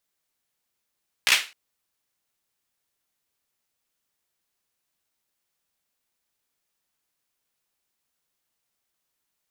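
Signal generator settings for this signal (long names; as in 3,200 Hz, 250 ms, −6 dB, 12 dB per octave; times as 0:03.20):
synth clap length 0.26 s, bursts 4, apart 16 ms, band 2,500 Hz, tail 0.30 s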